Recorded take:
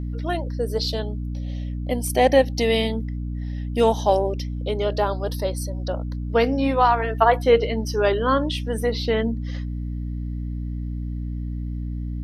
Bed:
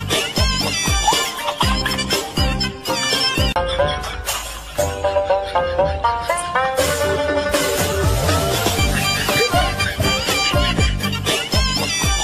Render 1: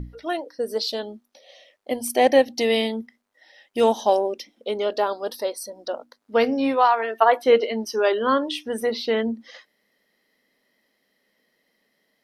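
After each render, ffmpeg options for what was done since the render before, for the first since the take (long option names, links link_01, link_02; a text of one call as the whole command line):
ffmpeg -i in.wav -af "bandreject=frequency=60:width_type=h:width=6,bandreject=frequency=120:width_type=h:width=6,bandreject=frequency=180:width_type=h:width=6,bandreject=frequency=240:width_type=h:width=6,bandreject=frequency=300:width_type=h:width=6" out.wav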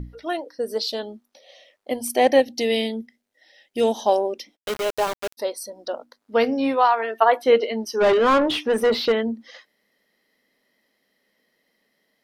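ffmpeg -i in.wav -filter_complex "[0:a]asettb=1/sr,asplit=3[link_01][link_02][link_03];[link_01]atrim=end=2.404[link_04];[link_02]atrim=start=2.4:end=3.95,asetpts=PTS-STARTPTS,afade=type=in:duration=0.004:curve=qsin,afade=type=out:start_time=1.546:duration=0.004:curve=qsin,equalizer=frequency=1100:width=1.7:gain=-12[link_05];[link_03]atrim=start=3.946[link_06];[link_04][link_05]acrossfade=duration=0.004:curve1=hsin:curve2=qsin[link_07];[link_07][link_06]acrossfade=duration=0.004:curve1=qsin:curve2=hsin,asplit=3[link_08][link_09][link_10];[link_08]afade=type=out:start_time=4.55:duration=0.02[link_11];[link_09]aeval=exprs='val(0)*gte(abs(val(0)),0.0596)':channel_layout=same,afade=type=in:start_time=4.55:duration=0.02,afade=type=out:start_time=5.37:duration=0.02[link_12];[link_10]afade=type=in:start_time=5.37:duration=0.02[link_13];[link_11][link_12][link_13]amix=inputs=3:normalize=0,asplit=3[link_14][link_15][link_16];[link_14]afade=type=out:start_time=8:duration=0.02[link_17];[link_15]asplit=2[link_18][link_19];[link_19]highpass=frequency=720:poles=1,volume=23dB,asoftclip=type=tanh:threshold=-9.5dB[link_20];[link_18][link_20]amix=inputs=2:normalize=0,lowpass=frequency=1500:poles=1,volume=-6dB,afade=type=in:start_time=8:duration=0.02,afade=type=out:start_time=9.11:duration=0.02[link_21];[link_16]afade=type=in:start_time=9.11:duration=0.02[link_22];[link_17][link_21][link_22]amix=inputs=3:normalize=0" out.wav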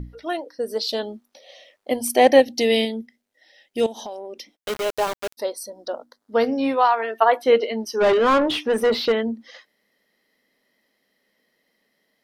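ffmpeg -i in.wav -filter_complex "[0:a]asettb=1/sr,asplit=3[link_01][link_02][link_03];[link_01]atrim=end=3.864[link_04];[link_02]atrim=start=3.86:end=4.55,asetpts=PTS-STARTPTS,afade=type=in:duration=0.004:curve=qsin,afade=type=out:start_time=0.686:duration=0.004:curve=qsin,acompressor=threshold=-31dB:ratio=6:attack=3.2:release=140:knee=1:detection=peak[link_05];[link_03]atrim=start=4.546[link_06];[link_04][link_05]acrossfade=duration=0.004:curve1=hsin:curve2=qsin[link_07];[link_07][link_06]acrossfade=duration=0.004:curve1=qsin:curve2=hsin,asettb=1/sr,asplit=3[link_08][link_09][link_10];[link_08]atrim=end=5.464[link_11];[link_09]atrim=start=5.46:end=6.48,asetpts=PTS-STARTPTS,afade=type=in:duration=0.004:curve=qsin,afade=type=out:start_time=1.016:duration=0.004:curve=qsin,equalizer=frequency=2500:width=2.8:gain=-8.5[link_12];[link_10]atrim=start=6.476[link_13];[link_11][link_12]acrossfade=duration=0.004:curve1=hsin:curve2=qsin[link_14];[link_14][link_13]acrossfade=duration=0.004:curve1=qsin:curve2=hsin,asplit=3[link_15][link_16][link_17];[link_15]atrim=end=0.892[link_18];[link_16]atrim=start=0.888:end=2.852,asetpts=PTS-STARTPTS,volume=3dB[link_19];[link_17]atrim=start=2.848[link_20];[link_18][link_19]acrossfade=duration=0.004:curve1=hsin:curve2=hsin[link_21];[link_21][link_20]acrossfade=duration=0.004:curve1=hsin:curve2=hsin" out.wav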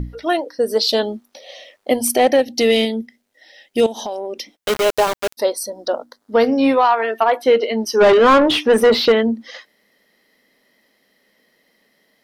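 ffmpeg -i in.wav -filter_complex "[0:a]asplit=2[link_01][link_02];[link_02]acontrast=86,volume=-3dB[link_03];[link_01][link_03]amix=inputs=2:normalize=0,alimiter=limit=-5.5dB:level=0:latency=1:release=415" out.wav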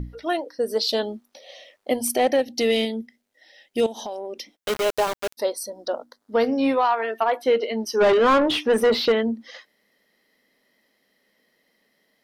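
ffmpeg -i in.wav -af "volume=-6dB" out.wav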